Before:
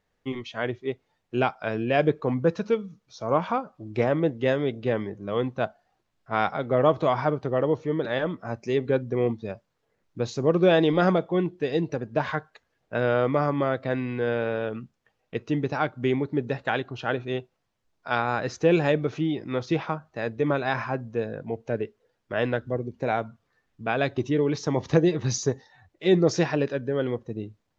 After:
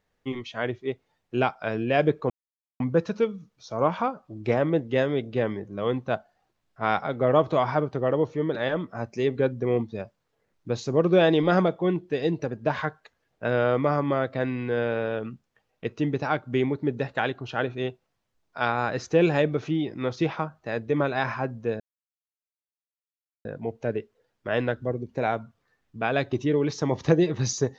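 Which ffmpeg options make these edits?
ffmpeg -i in.wav -filter_complex "[0:a]asplit=3[link_01][link_02][link_03];[link_01]atrim=end=2.3,asetpts=PTS-STARTPTS,afade=type=out:start_time=2.296:duration=0.004:curve=hsin,apad=pad_dur=0.5[link_04];[link_02]atrim=start=2.3:end=21.3,asetpts=PTS-STARTPTS,afade=type=in:duration=0.004:curve=hsin,afade=type=out:start_time=18.996:duration=0.004:curve=hsin,apad=pad_dur=1.65[link_05];[link_03]atrim=start=21.3,asetpts=PTS-STARTPTS,afade=type=in:duration=0.004:curve=hsin[link_06];[link_04][link_05][link_06]concat=n=3:v=0:a=1" out.wav

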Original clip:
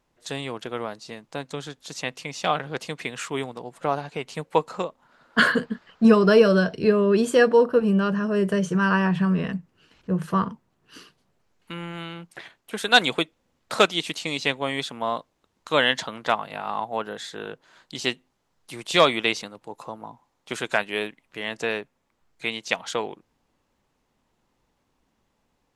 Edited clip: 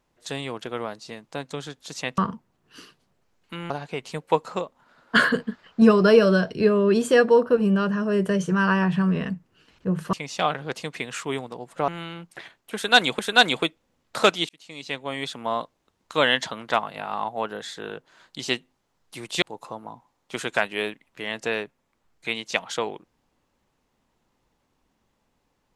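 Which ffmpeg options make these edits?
ffmpeg -i in.wav -filter_complex "[0:a]asplit=8[link_01][link_02][link_03][link_04][link_05][link_06][link_07][link_08];[link_01]atrim=end=2.182[link_09];[link_02]atrim=start=10.358:end=11.882[link_10];[link_03]atrim=start=3.928:end=10.362[link_11];[link_04]atrim=start=2.178:end=3.932[link_12];[link_05]atrim=start=11.878:end=13.192[link_13];[link_06]atrim=start=12.748:end=14.05,asetpts=PTS-STARTPTS,afade=type=out:start_time=1.298:duration=0.004:curve=hsin[link_14];[link_07]atrim=start=14.05:end=18.982,asetpts=PTS-STARTPTS,afade=type=in:duration=0.96[link_15];[link_08]atrim=start=19.588[link_16];[link_09][link_10]acrossfade=duration=0.004:curve1=hsin:curve2=hsin[link_17];[link_17][link_11]acrossfade=duration=0.004:curve1=hsin:curve2=hsin[link_18];[link_18][link_12]acrossfade=duration=0.004:curve1=hsin:curve2=hsin[link_19];[link_19][link_13]acrossfade=duration=0.004:curve1=hsin:curve2=hsin[link_20];[link_14][link_15]concat=n=2:v=0:a=1[link_21];[link_20][link_21]acrossfade=duration=0.004:curve1=hsin:curve2=hsin[link_22];[link_22][link_16]acrossfade=duration=0.004:curve1=hsin:curve2=hsin" out.wav

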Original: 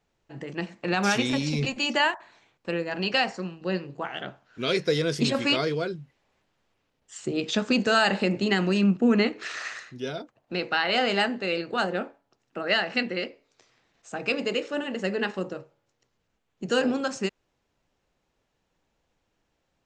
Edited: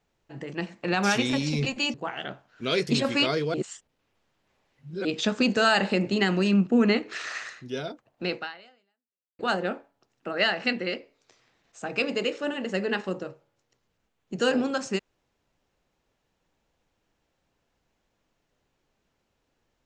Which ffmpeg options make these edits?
ffmpeg -i in.wav -filter_complex "[0:a]asplit=6[link_01][link_02][link_03][link_04][link_05][link_06];[link_01]atrim=end=1.942[link_07];[link_02]atrim=start=3.908:end=4.842[link_08];[link_03]atrim=start=5.168:end=5.842[link_09];[link_04]atrim=start=5.838:end=7.352,asetpts=PTS-STARTPTS,areverse[link_10];[link_05]atrim=start=7.348:end=11.69,asetpts=PTS-STARTPTS,afade=type=out:start_time=3.302:duration=1.04:curve=exp[link_11];[link_06]atrim=start=11.69,asetpts=PTS-STARTPTS,afade=type=in:duration=0.004:curve=hsin[link_12];[link_07][link_08]acrossfade=duration=0.004:curve1=hsin:curve2=hsin[link_13];[link_13][link_09]acrossfade=duration=0.004:curve1=hsin:curve2=hsin[link_14];[link_14][link_10]acrossfade=duration=0.004:curve1=hsin:curve2=hsin[link_15];[link_11][link_12]concat=n=2:v=0:a=1[link_16];[link_15][link_16]acrossfade=duration=0.004:curve1=hsin:curve2=hsin" out.wav

